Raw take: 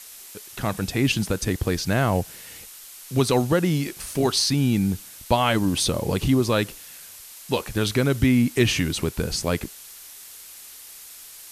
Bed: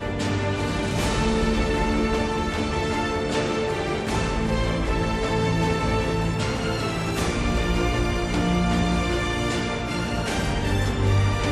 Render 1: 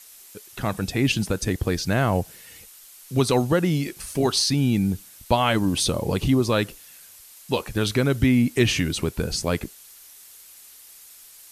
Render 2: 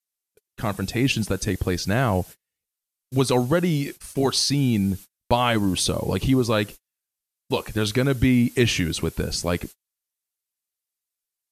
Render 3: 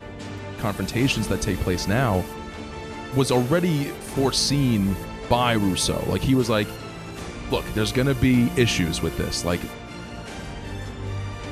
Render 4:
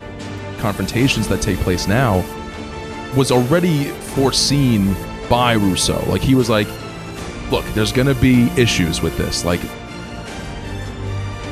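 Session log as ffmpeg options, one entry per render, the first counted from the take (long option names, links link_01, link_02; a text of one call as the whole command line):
ffmpeg -i in.wav -af "afftdn=noise_reduction=6:noise_floor=-43" out.wav
ffmpeg -i in.wav -af "agate=range=-40dB:threshold=-35dB:ratio=16:detection=peak" out.wav
ffmpeg -i in.wav -i bed.wav -filter_complex "[1:a]volume=-10dB[link_01];[0:a][link_01]amix=inputs=2:normalize=0" out.wav
ffmpeg -i in.wav -af "volume=6dB,alimiter=limit=-2dB:level=0:latency=1" out.wav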